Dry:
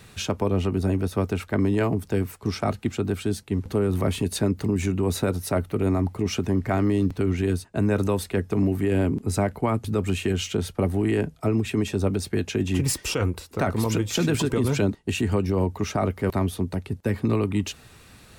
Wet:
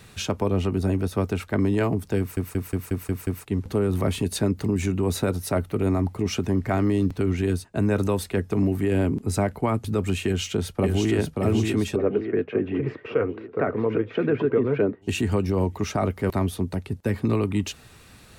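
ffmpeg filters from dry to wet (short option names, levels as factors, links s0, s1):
-filter_complex "[0:a]asplit=2[s0][s1];[s1]afade=t=in:st=10.25:d=0.01,afade=t=out:st=11.15:d=0.01,aecho=0:1:580|1160|1740|2320|2900|3480|4060|4640|5220:0.630957|0.378574|0.227145|0.136287|0.0817721|0.0490632|0.0294379|0.0176628|0.0105977[s2];[s0][s2]amix=inputs=2:normalize=0,asplit=3[s3][s4][s5];[s3]afade=t=out:st=11.95:d=0.02[s6];[s4]highpass=f=130:w=0.5412,highpass=f=130:w=1.3066,equalizer=f=180:t=q:w=4:g=-9,equalizer=f=450:t=q:w=4:g=8,equalizer=f=880:t=q:w=4:g=-6,lowpass=f=2100:w=0.5412,lowpass=f=2100:w=1.3066,afade=t=in:st=11.95:d=0.02,afade=t=out:st=15.01:d=0.02[s7];[s5]afade=t=in:st=15.01:d=0.02[s8];[s6][s7][s8]amix=inputs=3:normalize=0,asplit=8[s9][s10][s11][s12][s13][s14][s15][s16];[s9]atrim=end=2.372[s17];[s10]atrim=start=2.188:end=2.372[s18];[s11]atrim=start=2.188:end=2.372[s19];[s12]atrim=start=2.188:end=2.372[s20];[s13]atrim=start=2.188:end=2.372[s21];[s14]atrim=start=2.188:end=2.372[s22];[s15]atrim=start=2.188:end=2.372[s23];[s16]atrim=start=3.448[s24];[s17][s18]acrossfade=d=0.004:c1=hsin:c2=hsin[s25];[s25][s19]acrossfade=d=0.004:c1=hsin:c2=hsin[s26];[s26][s20]acrossfade=d=0.004:c1=hsin:c2=hsin[s27];[s27][s21]acrossfade=d=0.004:c1=hsin:c2=hsin[s28];[s28][s22]acrossfade=d=0.004:c1=hsin:c2=hsin[s29];[s29][s23]acrossfade=d=0.004:c1=hsin:c2=hsin[s30];[s30][s24]acrossfade=d=0.004:c1=hsin:c2=hsin"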